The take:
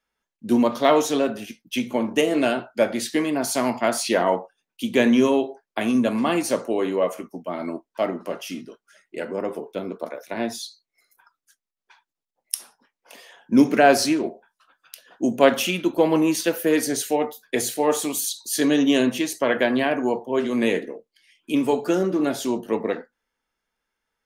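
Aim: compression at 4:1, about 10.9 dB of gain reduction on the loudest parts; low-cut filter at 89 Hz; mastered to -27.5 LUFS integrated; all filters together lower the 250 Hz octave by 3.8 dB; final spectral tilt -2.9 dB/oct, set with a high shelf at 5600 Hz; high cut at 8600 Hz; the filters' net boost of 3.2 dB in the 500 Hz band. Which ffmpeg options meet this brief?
-af "highpass=89,lowpass=8.6k,equalizer=f=250:t=o:g=-6.5,equalizer=f=500:t=o:g=5.5,highshelf=f=5.6k:g=6,acompressor=threshold=-20dB:ratio=4,volume=-1.5dB"

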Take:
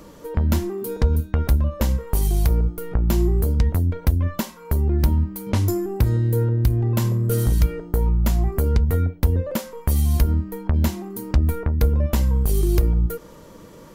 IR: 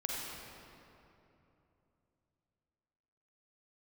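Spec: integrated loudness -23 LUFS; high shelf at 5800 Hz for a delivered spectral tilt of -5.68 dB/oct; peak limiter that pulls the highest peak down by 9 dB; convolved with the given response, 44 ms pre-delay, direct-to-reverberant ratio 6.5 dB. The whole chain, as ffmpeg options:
-filter_complex "[0:a]highshelf=f=5.8k:g=4.5,alimiter=limit=-15dB:level=0:latency=1,asplit=2[a][b];[1:a]atrim=start_sample=2205,adelay=44[c];[b][c]afir=irnorm=-1:irlink=0,volume=-10dB[d];[a][d]amix=inputs=2:normalize=0,volume=1dB"

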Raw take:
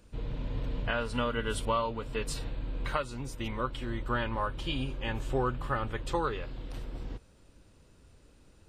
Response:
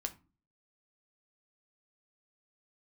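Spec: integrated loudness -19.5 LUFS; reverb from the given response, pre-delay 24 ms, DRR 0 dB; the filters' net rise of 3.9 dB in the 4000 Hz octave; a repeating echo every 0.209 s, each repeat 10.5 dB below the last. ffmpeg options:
-filter_complex "[0:a]equalizer=f=4k:t=o:g=5.5,aecho=1:1:209|418|627:0.299|0.0896|0.0269,asplit=2[a][b];[1:a]atrim=start_sample=2205,adelay=24[c];[b][c]afir=irnorm=-1:irlink=0,volume=0.5dB[d];[a][d]amix=inputs=2:normalize=0,volume=10.5dB"

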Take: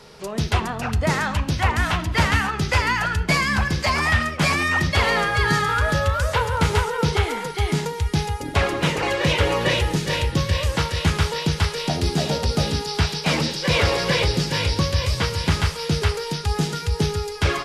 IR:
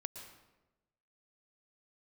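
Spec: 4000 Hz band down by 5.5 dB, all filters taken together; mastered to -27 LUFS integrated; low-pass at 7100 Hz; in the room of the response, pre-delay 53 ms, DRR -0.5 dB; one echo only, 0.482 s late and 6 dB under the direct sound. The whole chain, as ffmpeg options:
-filter_complex "[0:a]lowpass=7.1k,equalizer=f=4k:t=o:g=-7,aecho=1:1:482:0.501,asplit=2[a][b];[1:a]atrim=start_sample=2205,adelay=53[c];[b][c]afir=irnorm=-1:irlink=0,volume=3dB[d];[a][d]amix=inputs=2:normalize=0,volume=-9dB"

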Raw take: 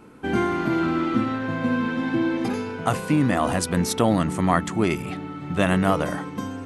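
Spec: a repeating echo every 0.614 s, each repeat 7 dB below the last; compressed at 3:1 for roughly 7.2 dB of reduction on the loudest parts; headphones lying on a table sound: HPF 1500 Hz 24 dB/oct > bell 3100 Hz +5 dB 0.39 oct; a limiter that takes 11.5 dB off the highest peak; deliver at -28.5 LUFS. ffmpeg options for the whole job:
-af "acompressor=threshold=-25dB:ratio=3,alimiter=limit=-23dB:level=0:latency=1,highpass=f=1.5k:w=0.5412,highpass=f=1.5k:w=1.3066,equalizer=f=3.1k:t=o:w=0.39:g=5,aecho=1:1:614|1228|1842|2456|3070:0.447|0.201|0.0905|0.0407|0.0183,volume=11dB"

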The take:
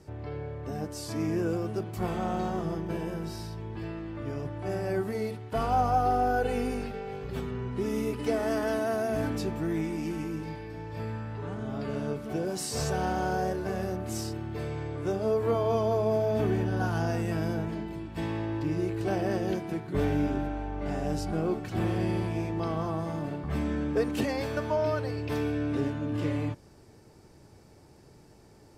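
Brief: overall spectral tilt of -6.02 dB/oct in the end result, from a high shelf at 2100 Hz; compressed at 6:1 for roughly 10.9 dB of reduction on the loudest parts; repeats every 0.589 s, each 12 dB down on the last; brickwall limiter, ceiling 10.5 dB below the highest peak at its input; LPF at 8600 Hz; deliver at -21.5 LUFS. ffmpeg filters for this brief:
-af "lowpass=8.6k,highshelf=f=2.1k:g=-3.5,acompressor=threshold=-34dB:ratio=6,alimiter=level_in=11dB:limit=-24dB:level=0:latency=1,volume=-11dB,aecho=1:1:589|1178|1767:0.251|0.0628|0.0157,volume=21.5dB"

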